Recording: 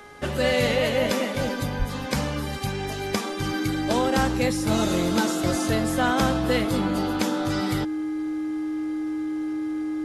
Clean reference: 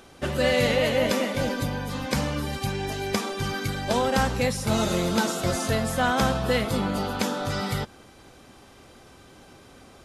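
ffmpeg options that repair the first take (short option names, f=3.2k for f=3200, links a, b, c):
-filter_complex "[0:a]bandreject=f=414.6:t=h:w=4,bandreject=f=829.2:t=h:w=4,bandreject=f=1.2438k:t=h:w=4,bandreject=f=1.6584k:t=h:w=4,bandreject=f=2.073k:t=h:w=4,bandreject=f=310:w=30,asplit=3[a][b][c];[a]afade=t=out:st=1.78:d=0.02[d];[b]highpass=f=140:w=0.5412,highpass=f=140:w=1.3066,afade=t=in:st=1.78:d=0.02,afade=t=out:st=1.9:d=0.02[e];[c]afade=t=in:st=1.9:d=0.02[f];[d][e][f]amix=inputs=3:normalize=0"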